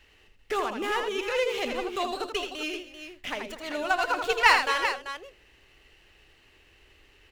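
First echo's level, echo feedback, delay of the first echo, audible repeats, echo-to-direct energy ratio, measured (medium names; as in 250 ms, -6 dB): -6.0 dB, no regular repeats, 81 ms, 3, -4.0 dB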